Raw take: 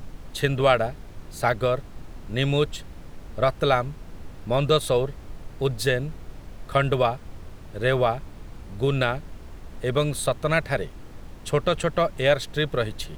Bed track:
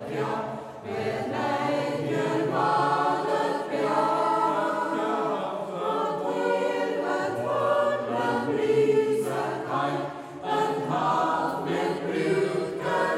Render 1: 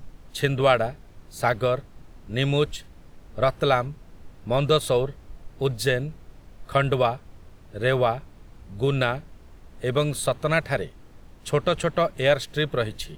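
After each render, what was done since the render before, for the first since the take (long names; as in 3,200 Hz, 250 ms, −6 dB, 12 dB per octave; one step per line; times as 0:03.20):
noise reduction from a noise print 7 dB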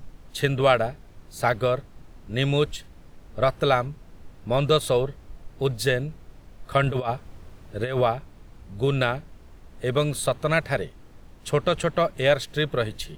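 0:06.83–0:08.01: compressor whose output falls as the input rises −24 dBFS, ratio −0.5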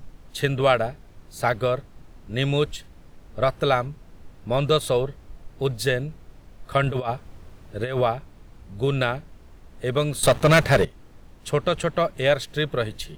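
0:10.23–0:10.85: leveller curve on the samples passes 3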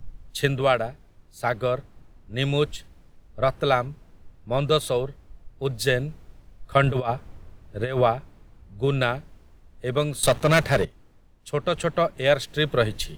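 speech leveller within 4 dB 0.5 s
multiband upward and downward expander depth 40%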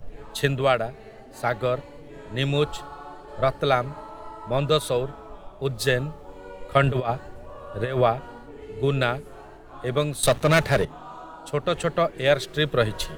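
mix in bed track −16.5 dB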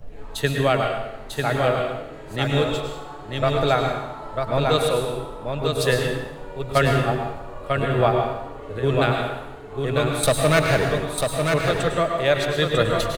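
single-tap delay 946 ms −4.5 dB
dense smooth reverb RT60 0.94 s, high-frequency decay 0.9×, pre-delay 90 ms, DRR 2.5 dB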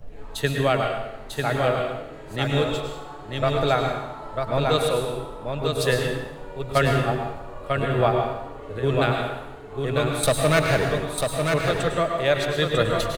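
level −1.5 dB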